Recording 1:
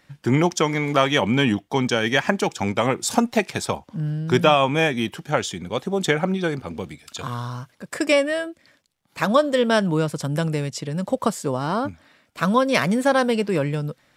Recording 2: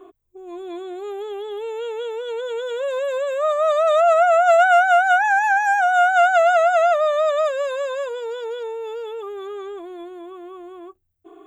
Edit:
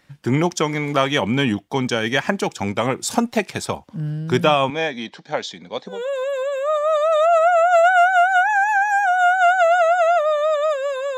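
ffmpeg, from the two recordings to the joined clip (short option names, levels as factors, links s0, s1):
-filter_complex "[0:a]asettb=1/sr,asplit=3[s0][s1][s2];[s0]atrim=end=4.704[s3];[s1]atrim=start=4.7:end=6.03,asetpts=PTS-STARTPTS,afade=t=in:d=0.004:c=qsin,afade=t=out:st=1.326:d=0.004:c=qsin,highpass=280,equalizer=f=360:t=q:w=4:g=-9,equalizer=f=1300:t=q:w=4:g=-8,equalizer=f=2800:t=q:w=4:g=-9,equalizer=f=4000:t=q:w=4:g=6,lowpass=f=5700:w=0.5412,lowpass=f=5700:w=1.3066[s4];[s2]atrim=start=6.026[s5];[s3][s4]acrossfade=d=0.004:c1=hsin:c2=qsin[s6];[s6][s5]acrossfade=d=0.004:c1=qsin:c2=hsin,apad=whole_dur=11.17,atrim=end=11.17,atrim=end=6.03,asetpts=PTS-STARTPTS[s7];[1:a]atrim=start=2.6:end=7.92,asetpts=PTS-STARTPTS[s8];[s7][s8]acrossfade=d=0.18:c1=tri:c2=tri"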